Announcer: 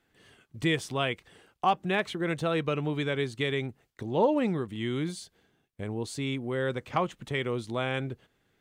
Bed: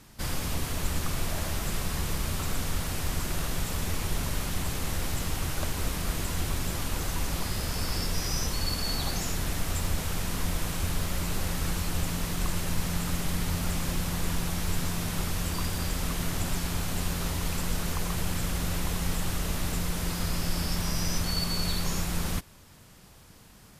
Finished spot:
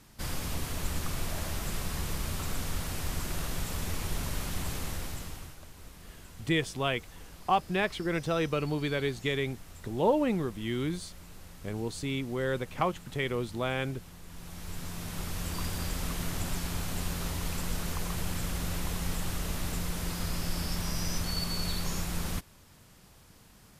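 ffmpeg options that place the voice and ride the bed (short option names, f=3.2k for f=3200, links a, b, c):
-filter_complex "[0:a]adelay=5850,volume=-1dB[a];[1:a]volume=12dB,afade=t=out:st=4.75:d=0.83:silence=0.16788,afade=t=in:st=14.27:d=1.39:silence=0.16788[b];[a][b]amix=inputs=2:normalize=0"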